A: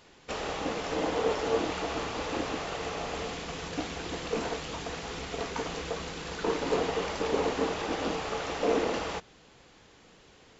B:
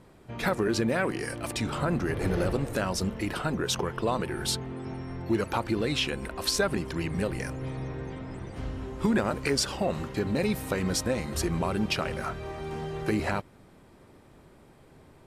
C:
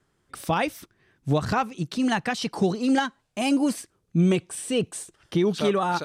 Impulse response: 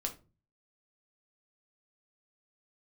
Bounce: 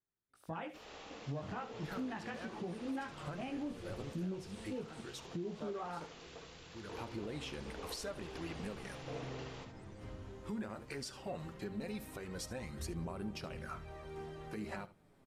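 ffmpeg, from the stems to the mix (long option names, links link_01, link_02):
-filter_complex "[0:a]acrossover=split=5100[link_01][link_02];[link_02]acompressor=threshold=-59dB:ratio=4:attack=1:release=60[link_03];[link_01][link_03]amix=inputs=2:normalize=0,highshelf=frequency=3200:gain=10.5,adelay=450,volume=-19.5dB,asplit=2[link_04][link_05];[link_05]volume=-7.5dB[link_06];[1:a]flanger=delay=0.1:depth=9.6:regen=45:speed=0.17:shape=sinusoidal,adelay=1450,volume=1dB,afade=type=out:start_time=4.82:duration=0.43:silence=0.266073,afade=type=in:start_time=6.79:duration=0.39:silence=0.251189,asplit=3[link_07][link_08][link_09];[link_08]volume=-10dB[link_10];[link_09]volume=-15.5dB[link_11];[2:a]afwtdn=0.0316,flanger=delay=17.5:depth=3.7:speed=0.37,volume=-10dB,asplit=4[link_12][link_13][link_14][link_15];[link_13]volume=-18dB[link_16];[link_14]volume=-12.5dB[link_17];[link_15]apad=whole_len=736934[link_18];[link_07][link_18]sidechaincompress=threshold=-51dB:ratio=8:attack=16:release=169[link_19];[3:a]atrim=start_sample=2205[link_20];[link_10][link_16]amix=inputs=2:normalize=0[link_21];[link_21][link_20]afir=irnorm=-1:irlink=0[link_22];[link_06][link_11][link_17]amix=inputs=3:normalize=0,aecho=0:1:72:1[link_23];[link_04][link_19][link_12][link_22][link_23]amix=inputs=5:normalize=0,alimiter=level_in=8.5dB:limit=-24dB:level=0:latency=1:release=314,volume=-8.5dB"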